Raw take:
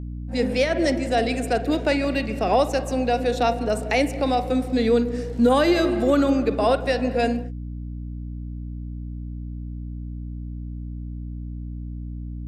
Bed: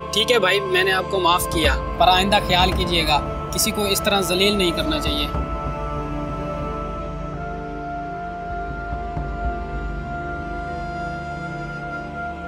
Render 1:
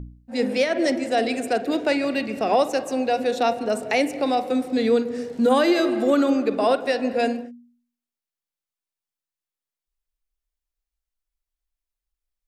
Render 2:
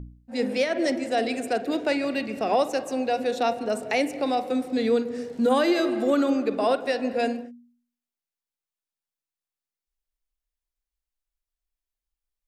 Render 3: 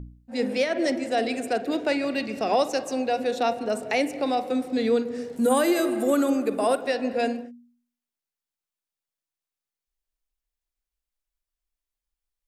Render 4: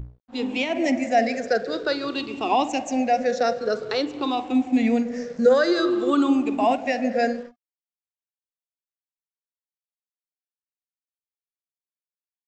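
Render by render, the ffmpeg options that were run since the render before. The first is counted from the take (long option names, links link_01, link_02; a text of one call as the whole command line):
ffmpeg -i in.wav -af "bandreject=frequency=60:width_type=h:width=4,bandreject=frequency=120:width_type=h:width=4,bandreject=frequency=180:width_type=h:width=4,bandreject=frequency=240:width_type=h:width=4,bandreject=frequency=300:width_type=h:width=4" out.wav
ffmpeg -i in.wav -af "volume=-3dB" out.wav
ffmpeg -i in.wav -filter_complex "[0:a]asettb=1/sr,asplit=3[link_01][link_02][link_03];[link_01]atrim=end=2.184[link_04];[link_02]atrim=start=2.18:end=3.02,asetpts=PTS-STARTPTS,afade=type=in:duration=0.004:curve=qsin,afade=type=out:start_time=0.836:duration=0.004:curve=qsin,equalizer=frequency=5300:width=1.2:gain=5[link_05];[link_03]atrim=start=3.016[link_06];[link_04][link_05]acrossfade=duration=0.004:curve1=hsin:curve2=qsin[link_07];[link_07][link_06]acrossfade=duration=0.004:curve1=qsin:curve2=hsin,asettb=1/sr,asplit=3[link_08][link_09][link_10];[link_08]atrim=end=5.364[link_11];[link_09]atrim=start=5.36:end=6.81,asetpts=PTS-STARTPTS,afade=type=in:duration=0.004:curve=qsin,afade=type=out:start_time=1.446:duration=0.004:curve=qsin,highshelf=frequency=6900:width_type=q:width=1.5:gain=13.5[link_12];[link_10]atrim=start=6.806[link_13];[link_11][link_12]acrossfade=duration=0.004:curve1=hsin:curve2=qsin[link_14];[link_14][link_13]acrossfade=duration=0.004:curve1=qsin:curve2=hsin" out.wav
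ffmpeg -i in.wav -af "afftfilt=real='re*pow(10,16/40*sin(2*PI*(0.61*log(max(b,1)*sr/1024/100)/log(2)-(-0.51)*(pts-256)/sr)))':imag='im*pow(10,16/40*sin(2*PI*(0.61*log(max(b,1)*sr/1024/100)/log(2)-(-0.51)*(pts-256)/sr)))':win_size=1024:overlap=0.75,aresample=16000,aeval=exprs='sgn(val(0))*max(abs(val(0))-0.00355,0)':channel_layout=same,aresample=44100" out.wav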